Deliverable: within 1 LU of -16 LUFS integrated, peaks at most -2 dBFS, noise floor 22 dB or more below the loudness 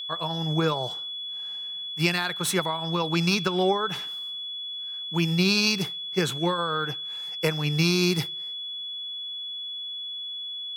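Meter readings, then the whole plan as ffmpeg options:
steady tone 3400 Hz; tone level -32 dBFS; loudness -26.5 LUFS; peak -7.5 dBFS; loudness target -16.0 LUFS
-> -af "bandreject=f=3.4k:w=30"
-af "volume=10.5dB,alimiter=limit=-2dB:level=0:latency=1"

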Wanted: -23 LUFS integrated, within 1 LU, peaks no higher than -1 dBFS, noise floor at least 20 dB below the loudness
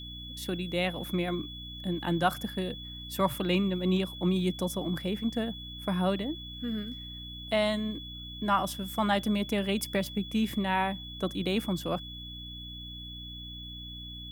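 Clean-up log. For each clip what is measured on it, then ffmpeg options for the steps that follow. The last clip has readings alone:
hum 60 Hz; harmonics up to 300 Hz; hum level -43 dBFS; steady tone 3400 Hz; tone level -42 dBFS; loudness -31.5 LUFS; peak -12.0 dBFS; loudness target -23.0 LUFS
-> -af "bandreject=f=60:t=h:w=4,bandreject=f=120:t=h:w=4,bandreject=f=180:t=h:w=4,bandreject=f=240:t=h:w=4,bandreject=f=300:t=h:w=4"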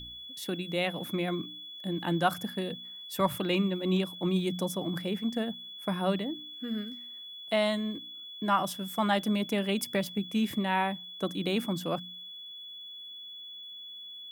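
hum none; steady tone 3400 Hz; tone level -42 dBFS
-> -af "bandreject=f=3.4k:w=30"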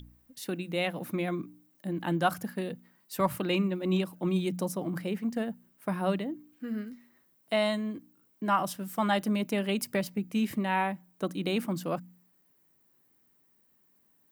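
steady tone none; loudness -31.5 LUFS; peak -12.0 dBFS; loudness target -23.0 LUFS
-> -af "volume=8.5dB"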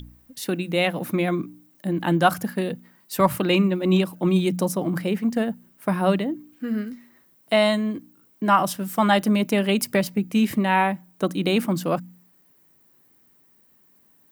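loudness -23.0 LUFS; peak -3.5 dBFS; noise floor -59 dBFS

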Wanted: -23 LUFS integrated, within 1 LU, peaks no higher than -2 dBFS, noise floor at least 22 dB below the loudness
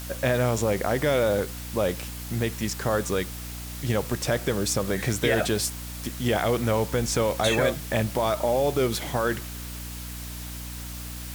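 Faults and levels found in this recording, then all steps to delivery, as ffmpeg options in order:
hum 60 Hz; harmonics up to 300 Hz; hum level -35 dBFS; noise floor -36 dBFS; noise floor target -49 dBFS; loudness -26.5 LUFS; peak -9.5 dBFS; loudness target -23.0 LUFS
-> -af "bandreject=f=60:t=h:w=6,bandreject=f=120:t=h:w=6,bandreject=f=180:t=h:w=6,bandreject=f=240:t=h:w=6,bandreject=f=300:t=h:w=6"
-af "afftdn=nr=13:nf=-36"
-af "volume=3.5dB"

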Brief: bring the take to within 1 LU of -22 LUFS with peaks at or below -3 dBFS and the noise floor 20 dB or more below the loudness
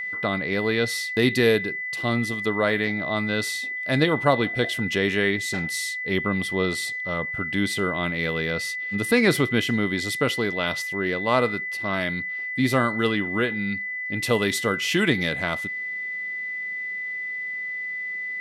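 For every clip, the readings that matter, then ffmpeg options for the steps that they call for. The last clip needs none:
steady tone 2000 Hz; tone level -28 dBFS; loudness -24.0 LUFS; peak -6.0 dBFS; loudness target -22.0 LUFS
-> -af "bandreject=f=2k:w=30"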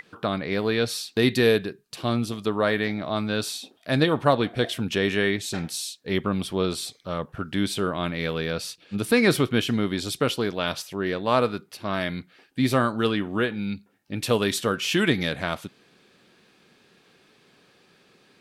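steady tone none; loudness -25.5 LUFS; peak -7.0 dBFS; loudness target -22.0 LUFS
-> -af "volume=3.5dB"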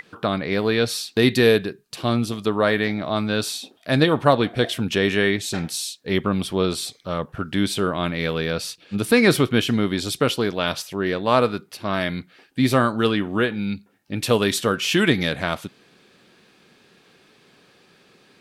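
loudness -22.0 LUFS; peak -3.5 dBFS; noise floor -57 dBFS

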